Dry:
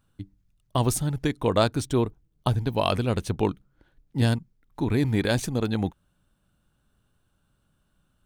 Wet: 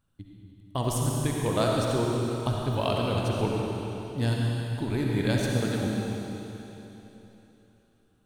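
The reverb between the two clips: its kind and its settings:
comb and all-pass reverb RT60 3.4 s, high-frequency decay 1×, pre-delay 25 ms, DRR −2.5 dB
level −6 dB

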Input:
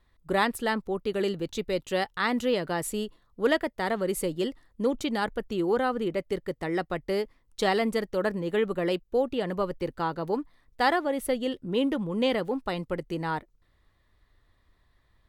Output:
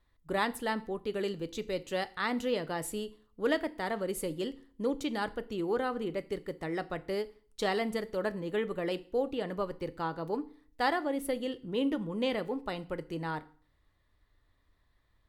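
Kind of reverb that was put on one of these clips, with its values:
feedback delay network reverb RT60 0.46 s, low-frequency decay 1.2×, high-frequency decay 0.95×, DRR 12.5 dB
level −5.5 dB

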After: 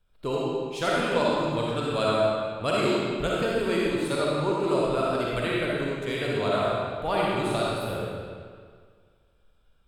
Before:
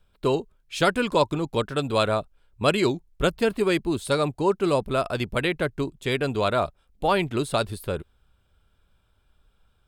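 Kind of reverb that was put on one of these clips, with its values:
comb and all-pass reverb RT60 1.9 s, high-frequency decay 0.85×, pre-delay 15 ms, DRR −5.5 dB
level −8 dB

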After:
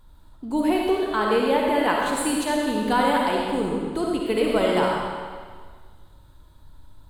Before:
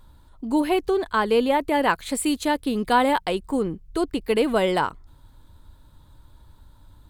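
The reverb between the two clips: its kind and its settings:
comb and all-pass reverb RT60 1.7 s, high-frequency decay 0.95×, pre-delay 20 ms, DRR −2 dB
level −3.5 dB

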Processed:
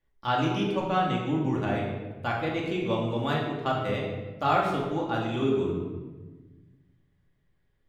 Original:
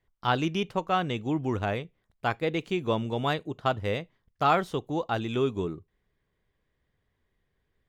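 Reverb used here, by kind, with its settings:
rectangular room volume 900 cubic metres, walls mixed, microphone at 2.4 metres
level −5 dB

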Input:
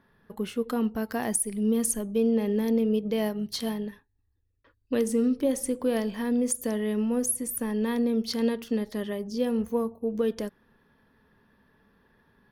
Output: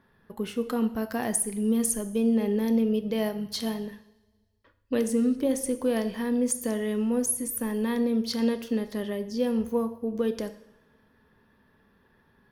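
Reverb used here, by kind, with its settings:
coupled-rooms reverb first 0.72 s, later 1.8 s, from −18 dB, DRR 10 dB

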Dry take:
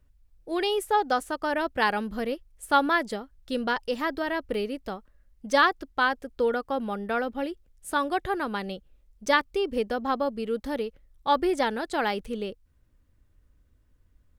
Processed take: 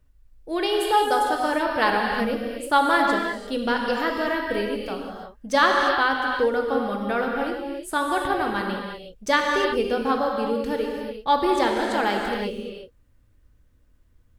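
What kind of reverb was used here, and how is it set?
reverb whose tail is shaped and stops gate 380 ms flat, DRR 0 dB
level +1.5 dB

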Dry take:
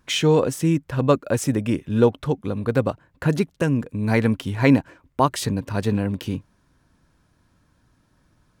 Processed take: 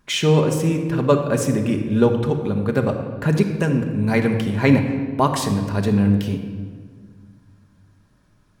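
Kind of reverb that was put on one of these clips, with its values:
rectangular room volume 2,200 cubic metres, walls mixed, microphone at 1.3 metres

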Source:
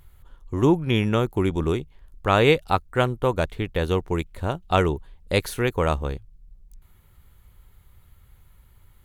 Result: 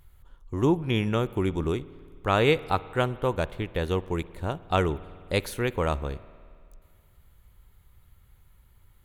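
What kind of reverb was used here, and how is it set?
spring reverb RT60 2.2 s, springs 53 ms, chirp 25 ms, DRR 18 dB
level −4 dB

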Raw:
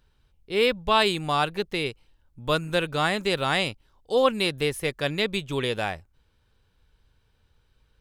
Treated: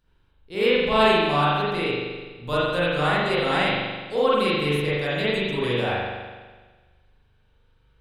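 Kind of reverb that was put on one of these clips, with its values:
spring reverb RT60 1.4 s, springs 41 ms, chirp 50 ms, DRR −10 dB
level −7 dB

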